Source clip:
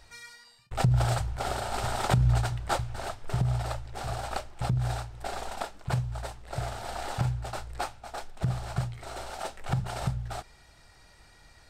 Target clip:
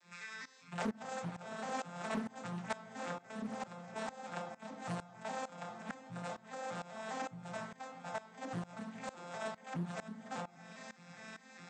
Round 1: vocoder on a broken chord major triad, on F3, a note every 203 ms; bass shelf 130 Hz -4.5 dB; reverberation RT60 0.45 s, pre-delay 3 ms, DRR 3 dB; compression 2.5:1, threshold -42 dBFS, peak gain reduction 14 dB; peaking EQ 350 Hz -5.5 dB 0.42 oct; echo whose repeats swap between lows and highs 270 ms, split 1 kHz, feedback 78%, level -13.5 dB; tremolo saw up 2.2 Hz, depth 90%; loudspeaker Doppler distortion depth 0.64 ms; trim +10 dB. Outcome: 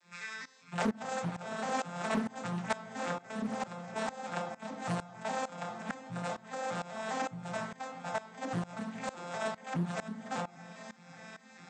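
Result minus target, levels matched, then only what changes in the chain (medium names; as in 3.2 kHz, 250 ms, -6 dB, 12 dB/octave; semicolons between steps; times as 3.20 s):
compression: peak gain reduction -6 dB
change: compression 2.5:1, threshold -52 dBFS, peak gain reduction 20 dB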